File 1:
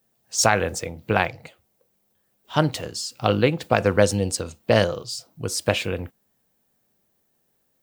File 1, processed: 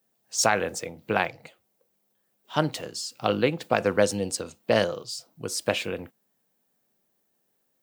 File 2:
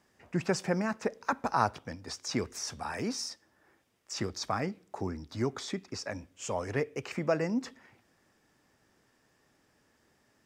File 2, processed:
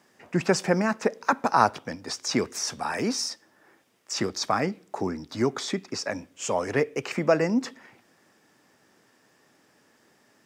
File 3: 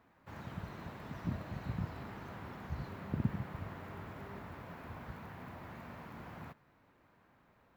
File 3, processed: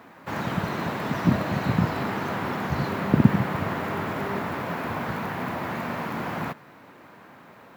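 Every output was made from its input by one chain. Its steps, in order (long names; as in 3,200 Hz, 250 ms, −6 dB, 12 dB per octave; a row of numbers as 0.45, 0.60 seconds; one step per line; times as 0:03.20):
high-pass filter 160 Hz 12 dB per octave
loudness normalisation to −27 LKFS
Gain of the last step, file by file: −3.5, +7.5, +19.5 decibels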